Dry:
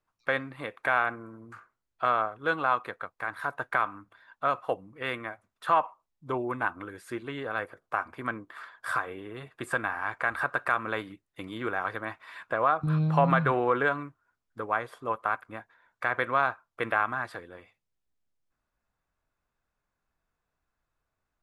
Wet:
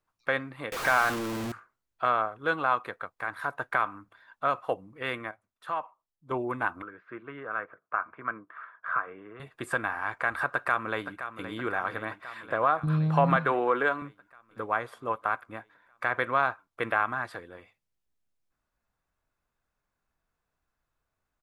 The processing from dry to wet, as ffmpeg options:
-filter_complex "[0:a]asettb=1/sr,asplit=3[a][b][c];[a]atrim=end=0.724[d];[b]atrim=start=0.72:end=1.52,asetpts=PTS-STARTPTS,afade=t=in:d=0.004:c=qsin,afade=t=out:st=0.796:d=0.004:c=qsin,aeval=exprs='val(0)+0.5*0.0398*sgn(val(0))':c=same[e];[c]atrim=start=1.516[f];[d][e]acrossfade=d=0.004:c1=hsin:c2=qsin[g];[g][f]acrossfade=d=0.004:c1=qsin:c2=hsin,asettb=1/sr,asplit=3[h][i][j];[h]atrim=end=6.824[k];[i]atrim=start=6.82:end=9.4,asetpts=PTS-STARTPTS,afade=t=in:d=0.004:c=qsin,afade=t=out:st=2.576:d=0.004:c=qsin,highpass=200,equalizer=f=250:t=q:w=4:g=-8,equalizer=f=370:t=q:w=4:g=-6,equalizer=f=530:t=q:w=4:g=-5,equalizer=f=820:t=q:w=4:g=-7,equalizer=f=1.3k:t=q:w=4:g=4,equalizer=f=1.9k:t=q:w=4:g=-4,lowpass=f=2.1k:w=0.5412,lowpass=f=2.1k:w=1.3066[l];[j]atrim=start=9.396[m];[k][l]acrossfade=d=0.004:c1=hsin:c2=qsin[n];[n][m]acrossfade=d=0.004:c1=qsin:c2=hsin,asplit=2[o][p];[p]afade=t=in:st=10.52:d=0.01,afade=t=out:st=11.47:d=0.01,aecho=0:1:520|1040|1560|2080|2600|3120|3640|4160|4680|5200:0.298538|0.208977|0.146284|0.102399|0.071679|0.0501753|0.0351227|0.0245859|0.0172101|0.0120471[q];[o][q]amix=inputs=2:normalize=0,asettb=1/sr,asplit=3[r][s][t];[r]atrim=end=13.364[u];[s]atrim=start=13.36:end=14.02,asetpts=PTS-STARTPTS,afade=t=in:d=0.004:c=qsin,afade=t=out:st=0.656:d=0.004:c=qsin,highpass=230[v];[t]atrim=start=14.016[w];[u][v]acrossfade=d=0.004:c1=hsin:c2=qsin[x];[x][w]acrossfade=d=0.004:c1=qsin:c2=hsin,asplit=3[y][z][aa];[y]atrim=end=5.312[ab];[z]atrim=start=5.308:end=6.312,asetpts=PTS-STARTPTS,volume=-8.5dB[ac];[aa]atrim=start=6.308[ad];[ab][ac]acrossfade=d=0.004:c1=hsin:c2=hsin[ae];[ae][ad]acrossfade=d=0.004:c1=hsin:c2=hsin"

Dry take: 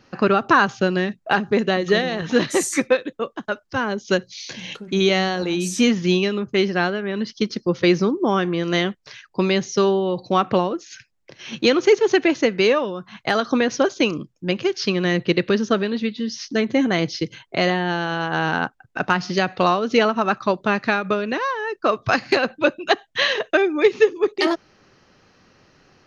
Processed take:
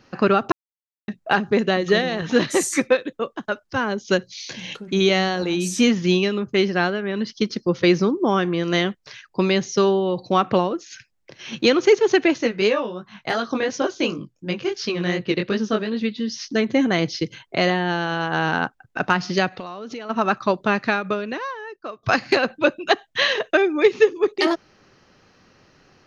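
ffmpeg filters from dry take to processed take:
-filter_complex "[0:a]asettb=1/sr,asplit=3[a][b][c];[a]atrim=end=12.384[d];[b]atrim=start=12.38:end=16.01,asetpts=PTS-STARTPTS,afade=t=in:d=0.004:c=qsin,afade=t=out:st=3.626:d=0.004:c=qsin,flanger=delay=17.5:depth=6:speed=2.8[e];[c]atrim=start=16.006[f];[d][e]acrossfade=d=0.004:c1=hsin:c2=qsin[g];[g][f]acrossfade=d=0.004:c1=qsin:c2=hsin,asplit=3[h][i][j];[h]afade=t=out:st=19.48:d=0.02[k];[i]acompressor=threshold=-29dB:ratio=10:attack=3.2:release=140:knee=1:detection=peak,afade=t=in:st=19.48:d=0.02,afade=t=out:st=20.09:d=0.02[l];[j]afade=t=in:st=20.09:d=0.02[m];[k][l][m]amix=inputs=3:normalize=0,asplit=4[n][o][p][q];[n]atrim=end=0.52,asetpts=PTS-STARTPTS,afade=t=out:st=0.516:d=0.004:c=hsin[r];[o]atrim=start=0.52:end=1.08,asetpts=PTS-STARTPTS,volume=0[s];[p]atrim=start=1.08:end=22.03,asetpts=PTS-STARTPTS,afade=t=in:d=0.004:c=hsin,afade=t=out:st=19.69:d=1.26:silence=0.0944061[t];[q]atrim=start=22.03,asetpts=PTS-STARTPTS,afade=t=in:d=0.004:c=hsin:silence=0.0944061[u];[r][s][t][u]concat=n=4:v=0:a=1"

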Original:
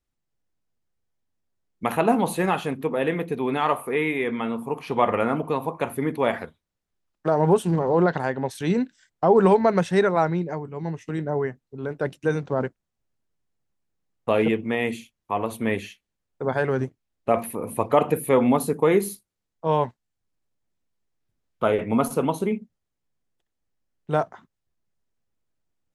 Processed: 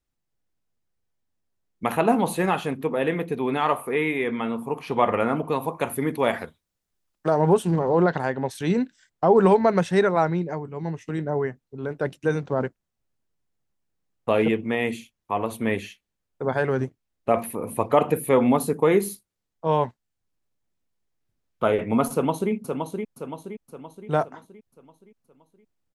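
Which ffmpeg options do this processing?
-filter_complex "[0:a]asettb=1/sr,asplit=3[a][b][c];[a]atrim=end=5.524[d];[b]atrim=start=5.52:end=7.37,asetpts=PTS-STARTPTS,afade=t=in:d=0.004:c=qsin,afade=t=out:st=1.846:d=0.004:c=qsin,highshelf=f=4.7k:g=7.5[e];[c]atrim=start=7.366[f];[d][e]acrossfade=d=0.004:c1=hsin:c2=qsin[g];[g][f]acrossfade=d=0.004:c1=qsin:c2=hsin,asplit=2[h][i];[i]afade=t=in:st=22.12:d=0.01,afade=t=out:st=22.52:d=0.01,aecho=0:1:520|1040|1560|2080|2600|3120:0.530884|0.265442|0.132721|0.0663606|0.0331803|0.0165901[j];[h][j]amix=inputs=2:normalize=0"

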